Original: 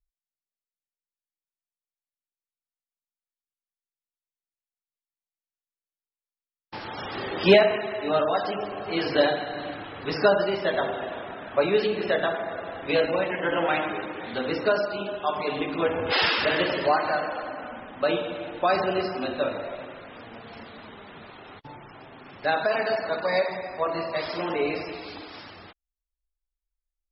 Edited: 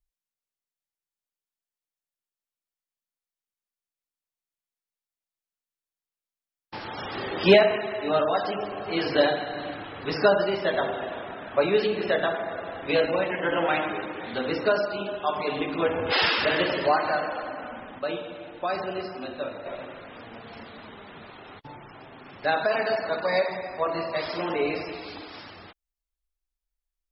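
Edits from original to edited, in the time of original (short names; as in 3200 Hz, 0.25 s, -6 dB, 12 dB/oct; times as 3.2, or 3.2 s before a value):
17.99–19.66 gain -6 dB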